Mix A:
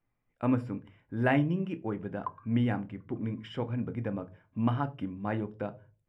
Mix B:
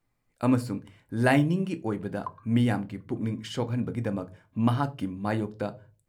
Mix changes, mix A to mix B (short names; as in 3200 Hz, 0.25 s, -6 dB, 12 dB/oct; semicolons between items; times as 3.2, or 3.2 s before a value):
speech +4.0 dB; master: remove polynomial smoothing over 25 samples